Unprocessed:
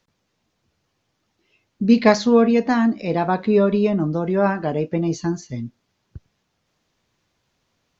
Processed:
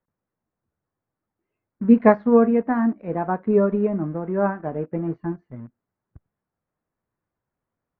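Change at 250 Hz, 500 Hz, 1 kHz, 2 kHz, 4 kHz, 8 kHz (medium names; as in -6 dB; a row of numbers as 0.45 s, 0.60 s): -2.0 dB, -1.5 dB, -2.5 dB, -5.5 dB, under -25 dB, no reading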